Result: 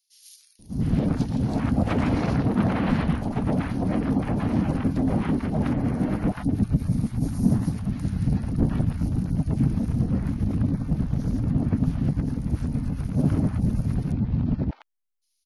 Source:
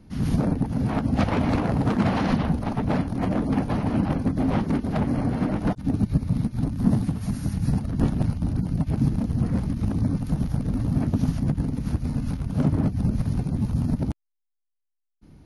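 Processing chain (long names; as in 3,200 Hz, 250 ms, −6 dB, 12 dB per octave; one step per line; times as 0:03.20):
0:10.04–0:12.36: high-shelf EQ 5,900 Hz −8 dB
three-band delay without the direct sound highs, lows, mids 590/700 ms, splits 890/4,000 Hz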